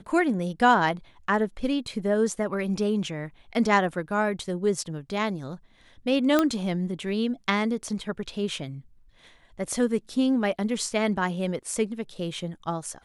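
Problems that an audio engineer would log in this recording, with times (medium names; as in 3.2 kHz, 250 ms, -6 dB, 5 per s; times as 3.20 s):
6.39 s: pop -8 dBFS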